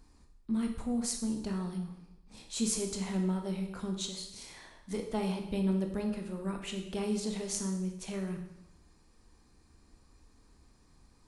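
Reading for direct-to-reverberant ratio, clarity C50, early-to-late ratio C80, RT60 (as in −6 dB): 3.0 dB, 6.5 dB, 9.0 dB, 0.90 s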